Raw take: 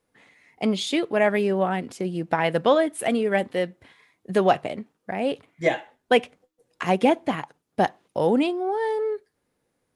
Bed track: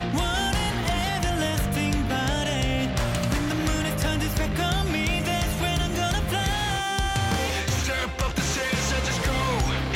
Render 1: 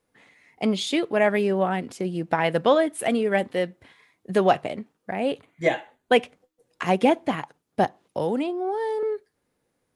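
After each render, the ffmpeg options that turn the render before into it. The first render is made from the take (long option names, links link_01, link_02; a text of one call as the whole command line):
ffmpeg -i in.wav -filter_complex "[0:a]asettb=1/sr,asplit=3[link_01][link_02][link_03];[link_01]atrim=end=5.114[link_04];[link_02]atrim=start=5.11:end=6.16,asetpts=PTS-STARTPTS,afade=type=in:duration=0.004:curve=qsin,afade=type=out:start_time=1.046:duration=0.004:curve=qsin,bandreject=frequency=5300:width=6[link_05];[link_03]atrim=start=6.156[link_06];[link_04][link_05]acrossfade=duration=0.004:curve1=hsin:curve2=qsin[link_07];[link_07][link_06]acrossfade=duration=0.004:curve1=qsin:curve2=hsin,asettb=1/sr,asplit=3[link_08][link_09][link_10];[link_08]atrim=end=7.844[link_11];[link_09]atrim=start=7.84:end=9.03,asetpts=PTS-STARTPTS,afade=type=in:duration=0.004:curve=qsin,afade=type=out:start_time=1.186:duration=0.004:curve=qsin,acrossover=split=360|1300|3000[link_12][link_13][link_14][link_15];[link_12]acompressor=threshold=-29dB:ratio=3[link_16];[link_13]acompressor=threshold=-27dB:ratio=3[link_17];[link_14]acompressor=threshold=-46dB:ratio=3[link_18];[link_15]acompressor=threshold=-48dB:ratio=3[link_19];[link_16][link_17][link_18][link_19]amix=inputs=4:normalize=0[link_20];[link_10]atrim=start=9.026[link_21];[link_11][link_20]acrossfade=duration=0.004:curve1=hsin:curve2=qsin[link_22];[link_22][link_21]acrossfade=duration=0.004:curve1=qsin:curve2=hsin" out.wav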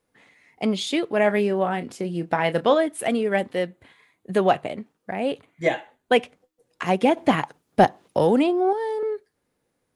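ffmpeg -i in.wav -filter_complex "[0:a]asettb=1/sr,asplit=3[link_01][link_02][link_03];[link_01]atrim=end=1.154[link_04];[link_02]atrim=start=1.15:end=2.74,asetpts=PTS-STARTPTS,afade=type=in:duration=0.004:curve=qsin,afade=type=out:start_time=1.586:duration=0.004:curve=qsin,asplit=2[link_05][link_06];[link_06]adelay=29,volume=-12dB[link_07];[link_05][link_07]amix=inputs=2:normalize=0,atrim=end_sample=70119[link_08];[link_03]atrim=start=2.736[link_09];[link_04][link_08]acrossfade=duration=0.004:curve1=hsin:curve2=qsin[link_10];[link_10][link_09]acrossfade=duration=0.004:curve1=qsin:curve2=hsin,asettb=1/sr,asplit=3[link_11][link_12][link_13];[link_11]atrim=end=3.664[link_14];[link_12]atrim=start=3.66:end=4.79,asetpts=PTS-STARTPTS,afade=type=in:duration=0.004:curve=qsin,afade=type=out:start_time=1.126:duration=0.004:curve=qsin,equalizer=frequency=5400:width=5.9:gain=-9.5[link_15];[link_13]atrim=start=4.786[link_16];[link_14][link_15]acrossfade=duration=0.004:curve1=hsin:curve2=qsin[link_17];[link_17][link_16]acrossfade=duration=0.004:curve1=qsin:curve2=hsin,asettb=1/sr,asplit=3[link_18][link_19][link_20];[link_18]atrim=end=7.174[link_21];[link_19]atrim=start=7.17:end=8.73,asetpts=PTS-STARTPTS,afade=type=in:duration=0.004:curve=qsin,afade=type=out:start_time=1.556:duration=0.004:curve=qsin,acontrast=77[link_22];[link_20]atrim=start=8.726[link_23];[link_21][link_22]acrossfade=duration=0.004:curve1=hsin:curve2=qsin[link_24];[link_24][link_23]acrossfade=duration=0.004:curve1=qsin:curve2=hsin" out.wav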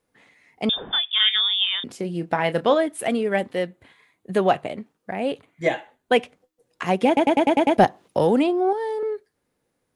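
ffmpeg -i in.wav -filter_complex "[0:a]asettb=1/sr,asplit=3[link_01][link_02][link_03];[link_01]atrim=end=0.694[link_04];[link_02]atrim=start=0.69:end=1.84,asetpts=PTS-STARTPTS,afade=type=in:duration=0.004:curve=qsin,afade=type=out:start_time=1.146:duration=0.004:curve=qsin,lowpass=frequency=3200:width_type=q:width=0.5098,lowpass=frequency=3200:width_type=q:width=0.6013,lowpass=frequency=3200:width_type=q:width=0.9,lowpass=frequency=3200:width_type=q:width=2.563,afreqshift=-3800[link_05];[link_03]atrim=start=1.836[link_06];[link_04][link_05]acrossfade=duration=0.004:curve1=hsin:curve2=qsin[link_07];[link_07][link_06]acrossfade=duration=0.004:curve1=qsin:curve2=hsin,asplit=8[link_08][link_09][link_10][link_11][link_12][link_13][link_14][link_15];[link_08]atrim=end=7.172[link_16];[link_09]atrim=start=7.068:end=7.172[link_17];[link_10]atrim=start=7.068:end=7.172[link_18];[link_11]atrim=start=7.068:end=7.172[link_19];[link_12]atrim=start=7.068:end=7.172[link_20];[link_13]atrim=start=7.068:end=7.172[link_21];[link_14]atrim=start=7.068:end=7.172[link_22];[link_15]atrim=start=7.768[link_23];[link_16][link_17]acrossfade=duration=0.004:curve1=hsin:curve2=hsin[link_24];[link_24][link_18]acrossfade=duration=0.004:curve1=hsin:curve2=hsin[link_25];[link_25][link_19]acrossfade=duration=0.004:curve1=hsin:curve2=hsin[link_26];[link_26][link_20]acrossfade=duration=0.004:curve1=hsin:curve2=hsin[link_27];[link_27][link_21]acrossfade=duration=0.004:curve1=hsin:curve2=hsin[link_28];[link_28][link_22]acrossfade=duration=0.004:curve1=hsin:curve2=hsin[link_29];[link_29][link_23]acrossfade=duration=0.004:curve1=hsin:curve2=hsin" out.wav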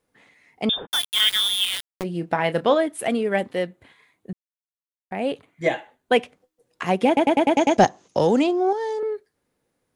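ffmpeg -i in.wav -filter_complex "[0:a]asplit=3[link_01][link_02][link_03];[link_01]afade=type=out:start_time=0.85:duration=0.02[link_04];[link_02]aeval=exprs='val(0)*gte(abs(val(0)),0.0794)':channel_layout=same,afade=type=in:start_time=0.85:duration=0.02,afade=type=out:start_time=2.02:duration=0.02[link_05];[link_03]afade=type=in:start_time=2.02:duration=0.02[link_06];[link_04][link_05][link_06]amix=inputs=3:normalize=0,asettb=1/sr,asplit=3[link_07][link_08][link_09];[link_07]atrim=end=7.564[link_10];[link_08]atrim=start=7.56:end=9,asetpts=PTS-STARTPTS,afade=type=in:duration=0.004:curve=qsin,afade=type=out:start_time=1.436:duration=0.004:curve=qsin,lowpass=frequency=6500:width_type=q:width=6.6[link_11];[link_09]atrim=start=8.996[link_12];[link_10][link_11]acrossfade=duration=0.004:curve1=hsin:curve2=qsin[link_13];[link_13][link_12]acrossfade=duration=0.004:curve1=qsin:curve2=hsin,asplit=3[link_14][link_15][link_16];[link_14]atrim=end=4.33,asetpts=PTS-STARTPTS,afade=type=out:start_time=4.326:duration=0.004:curve=hsin[link_17];[link_15]atrim=start=4.33:end=5.11,asetpts=PTS-STARTPTS,volume=0[link_18];[link_16]atrim=start=5.11,asetpts=PTS-STARTPTS,afade=type=in:duration=0.004:curve=hsin[link_19];[link_17][link_18][link_19]concat=n=3:v=0:a=1" out.wav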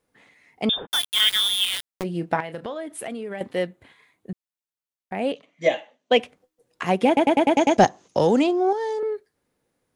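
ffmpeg -i in.wav -filter_complex "[0:a]asettb=1/sr,asplit=3[link_01][link_02][link_03];[link_01]atrim=end=2.404[link_04];[link_02]atrim=start=2.4:end=3.41,asetpts=PTS-STARTPTS,afade=type=in:duration=0.004:curve=qsin,afade=type=out:start_time=1.006:duration=0.004:curve=qsin,acompressor=threshold=-29dB:ratio=6:attack=3.2:release=140:knee=1:detection=peak[link_05];[link_03]atrim=start=3.406[link_06];[link_04][link_05]acrossfade=duration=0.004:curve1=hsin:curve2=qsin[link_07];[link_07][link_06]acrossfade=duration=0.004:curve1=qsin:curve2=hsin,asettb=1/sr,asplit=3[link_08][link_09][link_10];[link_08]atrim=end=5.324[link_11];[link_09]atrim=start=5.32:end=6.2,asetpts=PTS-STARTPTS,afade=type=in:duration=0.004:curve=qsin,afade=type=out:start_time=0.876:duration=0.004:curve=qsin,highpass=frequency=180:width=0.5412,highpass=frequency=180:width=1.3066,equalizer=frequency=370:width_type=q:width=4:gain=-8,equalizer=frequency=580:width_type=q:width=4:gain=7,equalizer=frequency=870:width_type=q:width=4:gain=-6,equalizer=frequency=1500:width_type=q:width=4:gain=-8,equalizer=frequency=3000:width_type=q:width=4:gain=5,equalizer=frequency=5900:width_type=q:width=4:gain=7,lowpass=frequency=7000:width=0.5412,lowpass=frequency=7000:width=1.3066[link_12];[link_10]atrim=start=6.196[link_13];[link_11][link_12]acrossfade=duration=0.004:curve1=hsin:curve2=qsin[link_14];[link_14][link_13]acrossfade=duration=0.004:curve1=qsin:curve2=hsin" out.wav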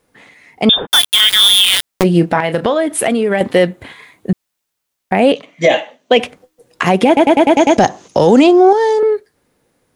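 ffmpeg -i in.wav -af "dynaudnorm=framelen=280:gausssize=11:maxgain=9dB,alimiter=level_in=12.5dB:limit=-1dB:release=50:level=0:latency=1" out.wav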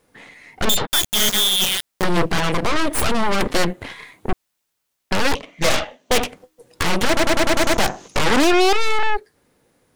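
ffmpeg -i in.wav -af "aeval=exprs='0.944*(cos(1*acos(clip(val(0)/0.944,-1,1)))-cos(1*PI/2))+0.335*(cos(8*acos(clip(val(0)/0.944,-1,1)))-cos(8*PI/2))':channel_layout=same,asoftclip=type=tanh:threshold=-12dB" out.wav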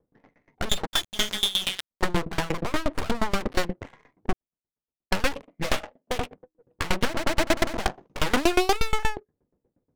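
ffmpeg -i in.wav -af "adynamicsmooth=sensitivity=3:basefreq=510,aeval=exprs='val(0)*pow(10,-24*if(lt(mod(8.4*n/s,1),2*abs(8.4)/1000),1-mod(8.4*n/s,1)/(2*abs(8.4)/1000),(mod(8.4*n/s,1)-2*abs(8.4)/1000)/(1-2*abs(8.4)/1000))/20)':channel_layout=same" out.wav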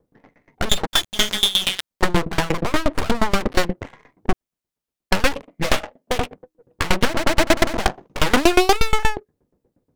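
ffmpeg -i in.wav -af "volume=6.5dB" out.wav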